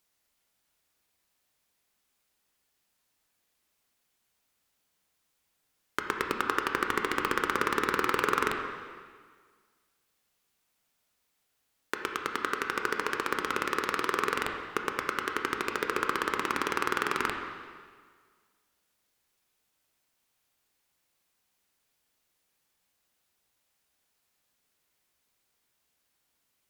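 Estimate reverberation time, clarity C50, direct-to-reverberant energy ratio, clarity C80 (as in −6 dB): 1.7 s, 4.5 dB, 2.5 dB, 6.0 dB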